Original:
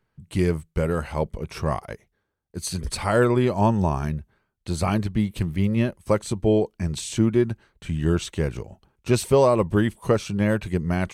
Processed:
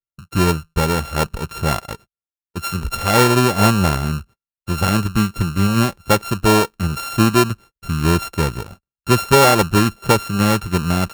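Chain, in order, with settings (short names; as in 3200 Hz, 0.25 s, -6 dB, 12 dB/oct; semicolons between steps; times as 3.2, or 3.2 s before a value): sample sorter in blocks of 32 samples; gate -45 dBFS, range -37 dB; gain +5.5 dB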